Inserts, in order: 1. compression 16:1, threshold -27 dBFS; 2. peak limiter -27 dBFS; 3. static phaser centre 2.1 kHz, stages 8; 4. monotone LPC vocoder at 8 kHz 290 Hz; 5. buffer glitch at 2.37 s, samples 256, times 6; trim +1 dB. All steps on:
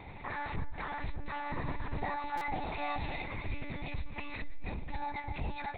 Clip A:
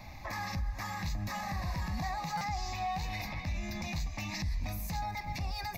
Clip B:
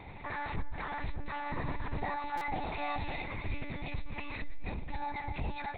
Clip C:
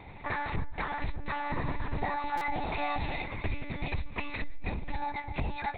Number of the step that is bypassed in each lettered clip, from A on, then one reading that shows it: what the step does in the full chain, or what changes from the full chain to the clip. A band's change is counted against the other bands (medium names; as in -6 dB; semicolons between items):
4, 4 kHz band +6.5 dB; 1, mean gain reduction 7.5 dB; 2, mean gain reduction 3.0 dB